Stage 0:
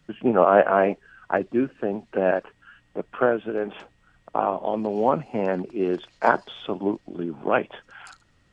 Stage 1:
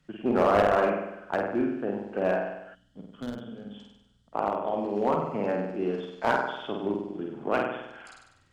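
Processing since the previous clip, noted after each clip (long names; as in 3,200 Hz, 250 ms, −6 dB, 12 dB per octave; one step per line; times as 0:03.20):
flutter between parallel walls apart 8.4 metres, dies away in 0.87 s
asymmetric clip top −13.5 dBFS
gain on a spectral selection 0:02.75–0:04.33, 300–2,900 Hz −17 dB
level −6 dB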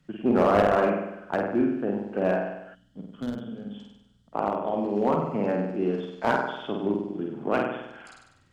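parametric band 190 Hz +5 dB 1.9 octaves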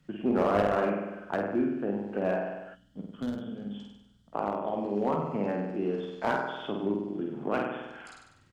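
in parallel at +1 dB: downward compressor, threshold −32 dBFS, peak gain reduction 15.5 dB
on the sum: double-tracking delay 20 ms −12 dB
level −7 dB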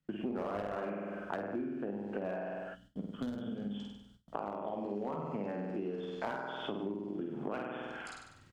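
noise gate with hold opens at −51 dBFS
downward compressor 6 to 1, threshold −37 dBFS, peak gain reduction 16 dB
level +2 dB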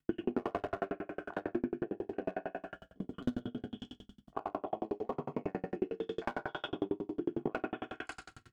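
convolution reverb RT60 0.65 s, pre-delay 3 ms, DRR 1.5 dB
tremolo with a ramp in dB decaying 11 Hz, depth 40 dB
level +7 dB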